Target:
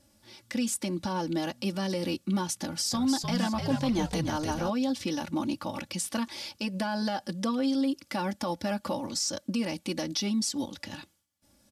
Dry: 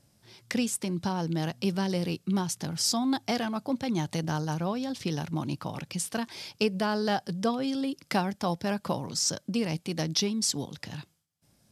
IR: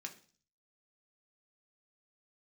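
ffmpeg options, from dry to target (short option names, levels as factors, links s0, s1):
-filter_complex "[0:a]aecho=1:1:3.5:0.9,alimiter=limit=0.0944:level=0:latency=1:release=95,asettb=1/sr,asplit=3[s0][s1][s2];[s0]atrim=end=2.614[s3];[s1]atrim=start=2.61:end=4.7,asetpts=PTS-STARTPTS,afade=t=in:d=0.004:c=qsin,afade=t=out:st=2.086:d=0.004:c=qsin,asplit=6[s4][s5][s6][s7][s8][s9];[s5]adelay=302,afreqshift=-78,volume=0.562[s10];[s6]adelay=604,afreqshift=-156,volume=0.214[s11];[s7]adelay=906,afreqshift=-234,volume=0.0813[s12];[s8]adelay=1208,afreqshift=-312,volume=0.0309[s13];[s9]adelay=1510,afreqshift=-390,volume=0.0117[s14];[s4][s10][s11][s12][s13][s14]amix=inputs=6:normalize=0,atrim=end_sample=92169[s15];[s2]atrim=start=4.696[s16];[s3][s15]acrossfade=d=0.004:c1=hsin:c2=qsin[s17];[s17][s16]acrossfade=d=0.004:c1=qsin:c2=hsin"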